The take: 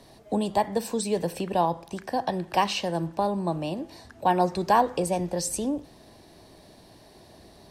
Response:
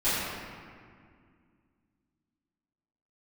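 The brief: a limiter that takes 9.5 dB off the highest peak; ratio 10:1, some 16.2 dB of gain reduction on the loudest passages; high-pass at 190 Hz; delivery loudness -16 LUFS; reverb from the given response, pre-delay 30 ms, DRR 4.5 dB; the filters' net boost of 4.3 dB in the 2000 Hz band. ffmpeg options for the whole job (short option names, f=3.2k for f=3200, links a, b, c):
-filter_complex "[0:a]highpass=190,equalizer=f=2k:t=o:g=5.5,acompressor=threshold=-31dB:ratio=10,alimiter=level_in=4.5dB:limit=-24dB:level=0:latency=1,volume=-4.5dB,asplit=2[a][b];[1:a]atrim=start_sample=2205,adelay=30[c];[b][c]afir=irnorm=-1:irlink=0,volume=-18dB[d];[a][d]amix=inputs=2:normalize=0,volume=21.5dB"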